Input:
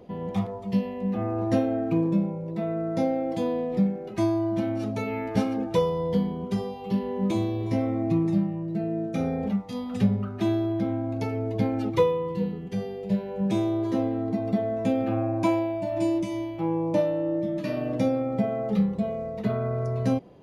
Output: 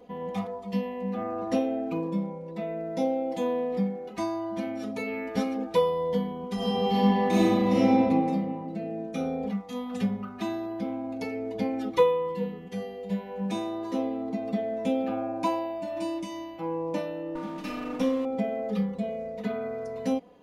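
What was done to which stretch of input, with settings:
6.55–7.9 reverb throw, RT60 2.2 s, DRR -10 dB
17.35–18.25 minimum comb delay 0.35 ms
whole clip: low shelf 300 Hz -8.5 dB; comb 4.1 ms, depth 83%; gain -2.5 dB

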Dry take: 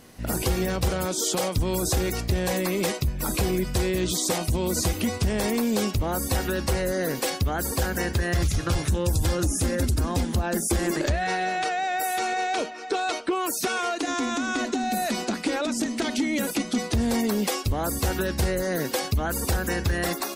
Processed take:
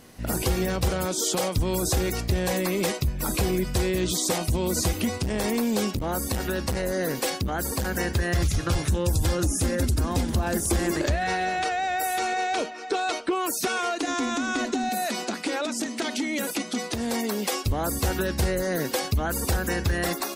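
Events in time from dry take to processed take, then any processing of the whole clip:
5.05–7.86 core saturation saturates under 180 Hz
9.8–10.4 echo throw 0.31 s, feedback 60%, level -12.5 dB
14.89–17.53 HPF 320 Hz 6 dB/oct

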